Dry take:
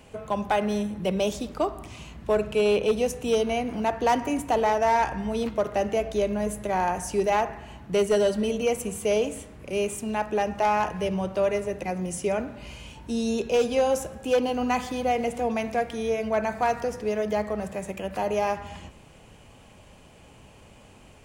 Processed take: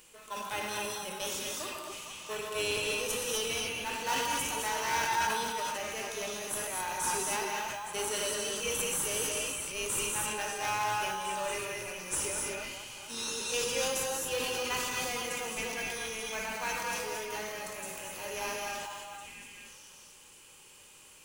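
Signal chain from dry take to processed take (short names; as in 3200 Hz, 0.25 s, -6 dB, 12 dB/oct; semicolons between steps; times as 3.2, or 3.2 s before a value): on a send: delay with a stepping band-pass 0.452 s, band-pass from 940 Hz, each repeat 1.4 oct, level -5 dB; on the sum: harmonic-percussive split harmonic +9 dB; HPF 230 Hz; differentiator; in parallel at -8 dB: sample-rate reducer 2400 Hz, jitter 0%; on the sum: bell 690 Hz -15 dB 0.25 oct; notches 50/100/150/200/250/300/350/400/450 Hz; non-linear reverb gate 0.28 s rising, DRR -0.5 dB; sustainer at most 24 dB/s; gain -1.5 dB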